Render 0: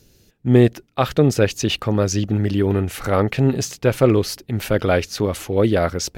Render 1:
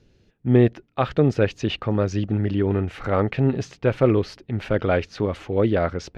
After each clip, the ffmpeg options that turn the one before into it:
-af "lowpass=2.9k,volume=-3dB"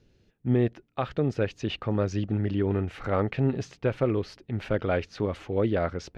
-af "alimiter=limit=-10dB:level=0:latency=1:release=488,volume=-4.5dB"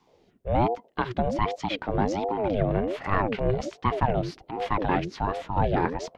-filter_complex "[0:a]acrossover=split=180[a][b];[a]adelay=70[c];[c][b]amix=inputs=2:normalize=0,aeval=exprs='val(0)*sin(2*PI*420*n/s+420*0.45/1.3*sin(2*PI*1.3*n/s))':c=same,volume=5dB"

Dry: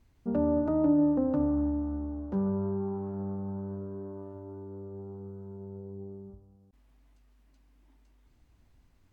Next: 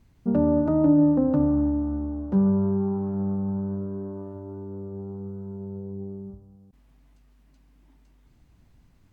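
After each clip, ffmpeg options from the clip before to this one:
-af "equalizer=f=160:w=1.5:g=7.5,volume=4dB"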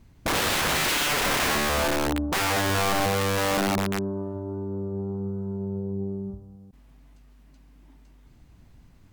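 -af "aeval=exprs='(mod(16.8*val(0)+1,2)-1)/16.8':c=same,volume=5dB"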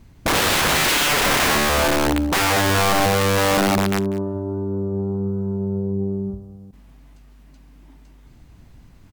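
-af "aecho=1:1:194:0.126,volume=6dB"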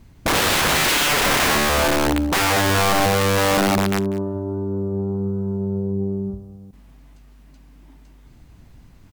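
-af "acrusher=bits=11:mix=0:aa=0.000001"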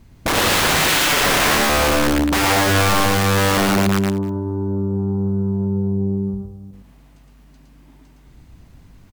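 -af "aecho=1:1:113:0.708"

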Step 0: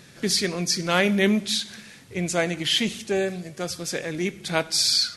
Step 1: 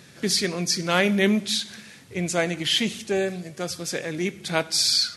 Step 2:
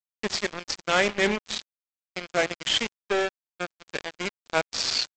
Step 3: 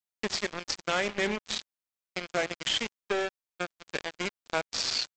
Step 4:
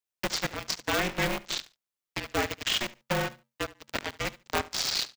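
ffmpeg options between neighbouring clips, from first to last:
-af "highpass=62"
-af "bass=f=250:g=-12,treble=f=4k:g=-8,aresample=16000,acrusher=bits=3:mix=0:aa=0.5,aresample=44100"
-af "acompressor=threshold=-27dB:ratio=2.5"
-af "aecho=1:1:72|144:0.112|0.0202,afreqshift=-48,aeval=exprs='val(0)*sgn(sin(2*PI*180*n/s))':c=same,volume=1dB"

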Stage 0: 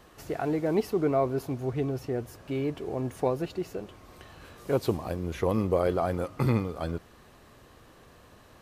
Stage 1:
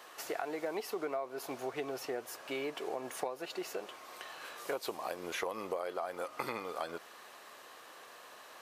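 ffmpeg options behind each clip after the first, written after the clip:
-af "highpass=670,acompressor=threshold=-39dB:ratio=10,volume=5.5dB"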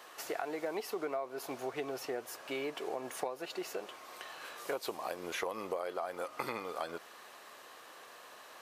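-af anull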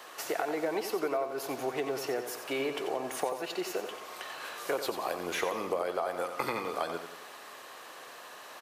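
-filter_complex "[0:a]acrossover=split=280|1500[a][b][c];[c]asoftclip=type=hard:threshold=-34.5dB[d];[a][b][d]amix=inputs=3:normalize=0,aecho=1:1:90|180|270|360|450|540:0.355|0.174|0.0852|0.0417|0.0205|0.01,volume=5dB"

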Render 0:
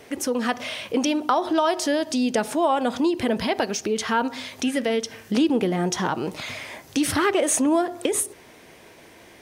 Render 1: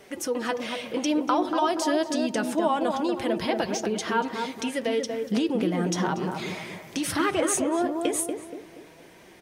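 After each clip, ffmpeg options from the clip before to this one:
-filter_complex "[0:a]flanger=delay=5:depth=1.6:regen=40:speed=1.3:shape=triangular,asplit=2[a][b];[b]adelay=237,lowpass=f=1k:p=1,volume=-3.5dB,asplit=2[c][d];[d]adelay=237,lowpass=f=1k:p=1,volume=0.46,asplit=2[e][f];[f]adelay=237,lowpass=f=1k:p=1,volume=0.46,asplit=2[g][h];[h]adelay=237,lowpass=f=1k:p=1,volume=0.46,asplit=2[i][j];[j]adelay=237,lowpass=f=1k:p=1,volume=0.46,asplit=2[k][l];[l]adelay=237,lowpass=f=1k:p=1,volume=0.46[m];[a][c][e][g][i][k][m]amix=inputs=7:normalize=0"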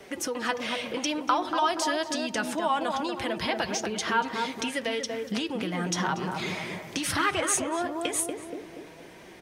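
-filter_complex "[0:a]highshelf=f=9.1k:g=-6,acrossover=split=130|850|2100[a][b][c][d];[b]acompressor=threshold=-36dB:ratio=5[e];[a][e][c][d]amix=inputs=4:normalize=0,volume=3dB"

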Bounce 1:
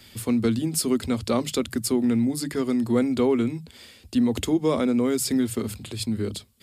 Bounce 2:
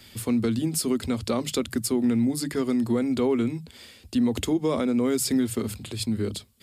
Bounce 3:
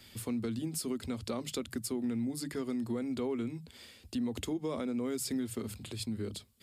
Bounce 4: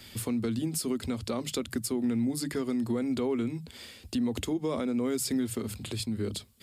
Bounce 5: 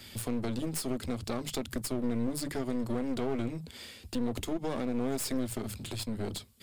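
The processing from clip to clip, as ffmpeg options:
-af "alimiter=limit=-15dB:level=0:latency=1:release=124"
-af "acompressor=threshold=-34dB:ratio=1.5,volume=-6dB"
-af "alimiter=level_in=3.5dB:limit=-24dB:level=0:latency=1:release=315,volume=-3.5dB,volume=6.5dB"
-af "aeval=exprs='clip(val(0),-1,0.01)':c=same"

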